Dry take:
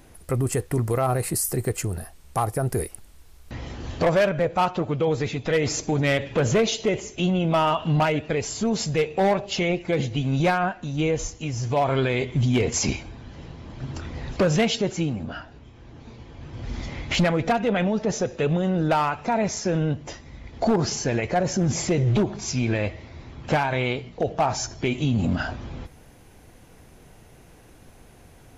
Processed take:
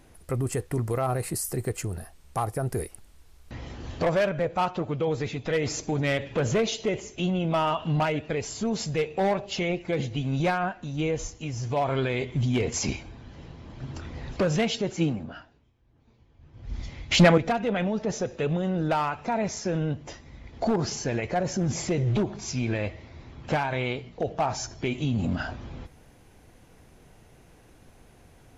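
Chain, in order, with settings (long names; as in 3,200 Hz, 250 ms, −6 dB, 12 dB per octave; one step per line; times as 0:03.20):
high-shelf EQ 12,000 Hz −6 dB
0:14.97–0:17.38: multiband upward and downward expander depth 100%
level −4 dB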